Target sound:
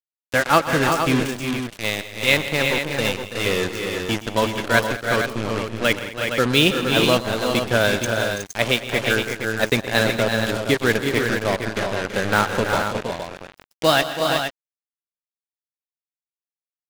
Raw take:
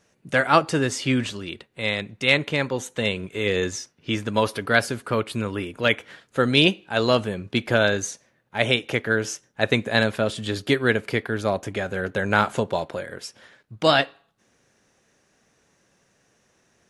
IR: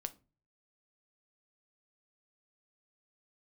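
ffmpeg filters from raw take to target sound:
-af "aeval=exprs='sgn(val(0))*max(abs(val(0))-0.00531,0)':c=same,acrusher=bits=3:mix=0:aa=0.5,aecho=1:1:121|162|211|331|367|466:0.158|0.158|0.119|0.316|0.473|0.422,volume=1.12"

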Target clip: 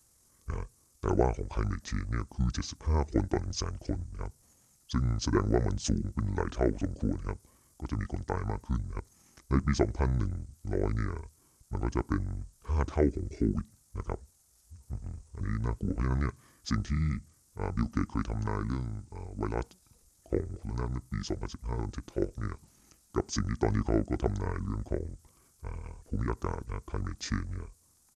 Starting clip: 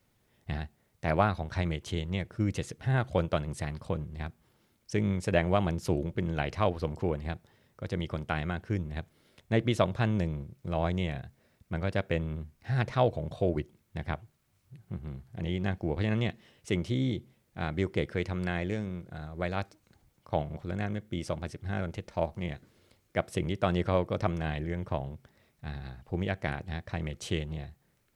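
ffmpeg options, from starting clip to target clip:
-af "asetrate=26222,aresample=44100,atempo=1.68179,highshelf=f=4500:t=q:w=1.5:g=13"

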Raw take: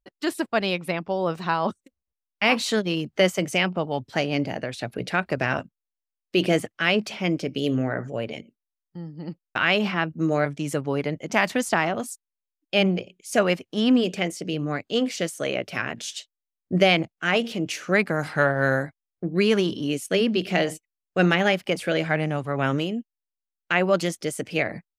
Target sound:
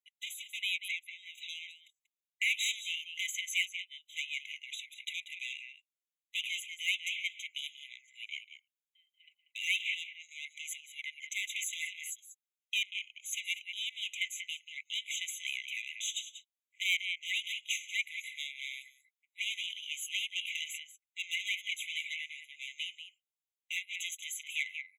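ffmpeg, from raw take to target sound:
-af "aecho=1:1:188:0.237,asoftclip=type=tanh:threshold=0.0891,afftfilt=real='re*eq(mod(floor(b*sr/1024/2000),2),1)':imag='im*eq(mod(floor(b*sr/1024/2000),2),1)':win_size=1024:overlap=0.75"

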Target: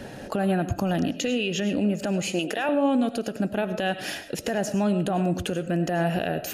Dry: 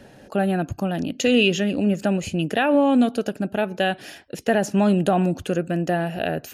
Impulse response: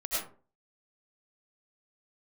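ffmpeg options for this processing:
-filter_complex "[0:a]asettb=1/sr,asplit=3[s0][s1][s2];[s0]atrim=end=2.224[s3];[s1]atrim=start=2.22:end=2.69,asetpts=PTS-STARTPTS,afade=t=in:d=0.004:c=qsin,afade=t=out:st=0.466:d=0.004:c=qsin,highpass=410[s4];[s2]atrim=start=2.686[s5];[s3][s4]acrossfade=d=0.004:c1=hsin:c2=qsin[s6];[s6][s5]acrossfade=d=0.004:c1=qsin:c2=hsin,acompressor=threshold=0.0398:ratio=4,alimiter=level_in=1.06:limit=0.0631:level=0:latency=1:release=107,volume=0.944,asplit=2[s7][s8];[1:a]atrim=start_sample=2205[s9];[s8][s9]afir=irnorm=-1:irlink=0,volume=0.158[s10];[s7][s10]amix=inputs=2:normalize=0,volume=2.24"

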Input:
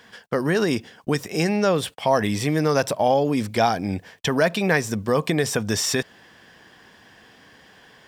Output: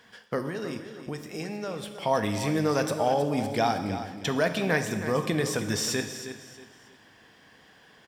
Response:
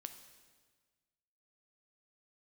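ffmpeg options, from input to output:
-filter_complex "[0:a]asettb=1/sr,asplit=3[s0][s1][s2];[s0]atrim=end=0.434[s3];[s1]atrim=start=0.43:end=1.96,asetpts=PTS-STARTPTS,afade=t=in:d=0.004:c=qsin,afade=t=out:st=1.526:d=0.004:c=qsin,acompressor=threshold=0.0316:ratio=2.5[s4];[s2]atrim=start=1.956[s5];[s3][s4]acrossfade=d=0.004:c1=hsin:c2=qsin[s6];[s6][s5]acrossfade=d=0.004:c1=qsin:c2=hsin,aecho=1:1:317|634|951:0.266|0.0798|0.0239[s7];[1:a]atrim=start_sample=2205,asetrate=48510,aresample=44100[s8];[s7][s8]afir=irnorm=-1:irlink=0"

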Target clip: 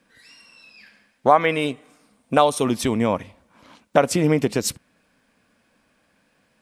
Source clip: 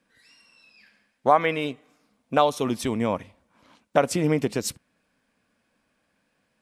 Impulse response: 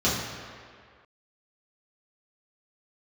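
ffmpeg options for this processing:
-filter_complex "[0:a]asettb=1/sr,asplit=3[s0][s1][s2];[s0]atrim=end=1.504[s3];[s1]atrim=start=1.5:end=2.65,asetpts=PTS-STARTPTS,afade=t=in:d=0.004:c=qsin,afade=t=out:st=1.146:d=0.004:c=qsin,equalizer=f=8800:w=5.9:g=12.5[s4];[s2]atrim=start=2.646[s5];[s3][s4]acrossfade=d=0.004:c1=hsin:c2=qsin[s6];[s6][s5]acrossfade=d=0.004:c1=qsin:c2=hsin,asplit=2[s7][s8];[s8]acompressor=threshold=0.0316:ratio=6,volume=0.841[s9];[s7][s9]amix=inputs=2:normalize=0,volume=1.26"

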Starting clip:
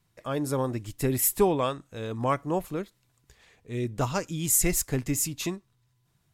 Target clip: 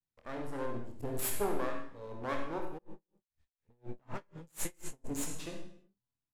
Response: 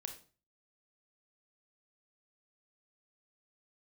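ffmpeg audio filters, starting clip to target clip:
-filter_complex "[0:a]afwtdn=0.0126,aeval=exprs='max(val(0),0)':c=same,asplit=2[s0][s1];[s1]adelay=25,volume=0.447[s2];[s0][s2]amix=inputs=2:normalize=0[s3];[1:a]atrim=start_sample=2205,afade=t=out:st=0.28:d=0.01,atrim=end_sample=12789,asetrate=26019,aresample=44100[s4];[s3][s4]afir=irnorm=-1:irlink=0,asplit=3[s5][s6][s7];[s5]afade=t=out:st=2.77:d=0.02[s8];[s6]aeval=exprs='val(0)*pow(10,-36*(0.5-0.5*cos(2*PI*4.1*n/s))/20)':c=same,afade=t=in:st=2.77:d=0.02,afade=t=out:st=5.04:d=0.02[s9];[s7]afade=t=in:st=5.04:d=0.02[s10];[s8][s9][s10]amix=inputs=3:normalize=0,volume=0.501"

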